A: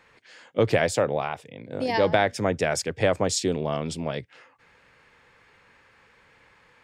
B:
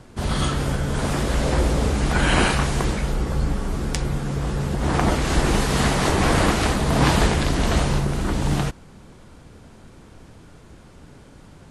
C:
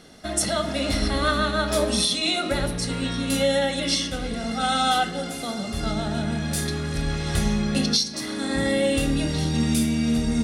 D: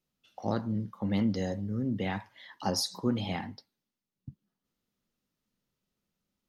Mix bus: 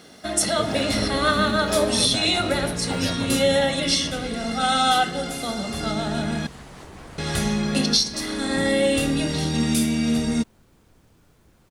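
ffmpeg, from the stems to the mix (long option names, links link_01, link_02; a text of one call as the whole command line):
ffmpeg -i stem1.wav -i stem2.wav -i stem3.wav -i stem4.wav -filter_complex "[0:a]asubboost=boost=7:cutoff=130,volume=-11dB[link_01];[1:a]acompressor=threshold=-32dB:ratio=2.5,adelay=750,volume=-12dB[link_02];[2:a]highpass=frequency=160:poles=1,volume=2.5dB,asplit=3[link_03][link_04][link_05];[link_03]atrim=end=6.47,asetpts=PTS-STARTPTS,afade=type=out:start_time=6.466:duration=0.004:curve=hsin[link_06];[link_04]atrim=start=6.47:end=7.18,asetpts=PTS-STARTPTS,volume=0[link_07];[link_05]atrim=start=7.18,asetpts=PTS-STARTPTS,afade=type=in:duration=0.004:curve=hsin[link_08];[link_06][link_07][link_08]concat=n=3:v=0:a=1[link_09];[3:a]acrusher=bits=7:mode=log:mix=0:aa=0.000001,adelay=250,volume=-1.5dB[link_10];[link_01][link_02][link_09][link_10]amix=inputs=4:normalize=0,acrusher=bits=10:mix=0:aa=0.000001" out.wav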